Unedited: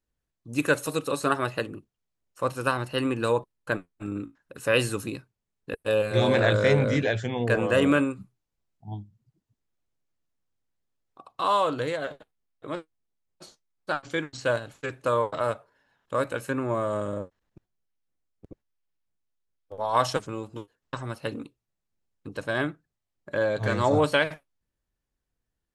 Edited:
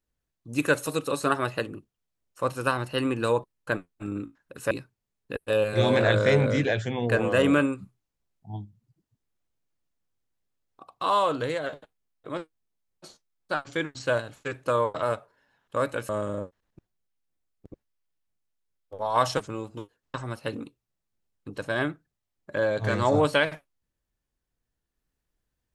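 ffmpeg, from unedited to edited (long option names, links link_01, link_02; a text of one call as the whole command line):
ffmpeg -i in.wav -filter_complex "[0:a]asplit=3[link_01][link_02][link_03];[link_01]atrim=end=4.712[link_04];[link_02]atrim=start=5.088:end=16.472[link_05];[link_03]atrim=start=16.878[link_06];[link_04][link_05]acrossfade=duration=0.004:curve1=hsin:curve2=hsin[link_07];[link_07][link_06]acrossfade=duration=0.004:curve1=hsin:curve2=hsin" out.wav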